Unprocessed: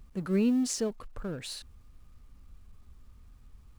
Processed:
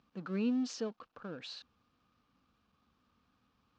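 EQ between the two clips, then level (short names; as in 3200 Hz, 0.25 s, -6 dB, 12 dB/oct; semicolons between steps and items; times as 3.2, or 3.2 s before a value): air absorption 150 m; speaker cabinet 300–6600 Hz, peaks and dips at 390 Hz -9 dB, 610 Hz -6 dB, 910 Hz -3 dB, 2000 Hz -8 dB; 0.0 dB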